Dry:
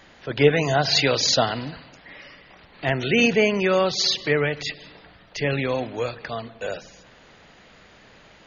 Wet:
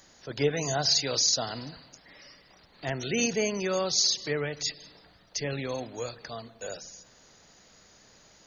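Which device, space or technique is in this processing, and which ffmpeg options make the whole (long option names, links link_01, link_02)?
over-bright horn tweeter: -af "highshelf=frequency=4200:width_type=q:width=1.5:gain=13,alimiter=limit=-5dB:level=0:latency=1:release=216,volume=-8.5dB"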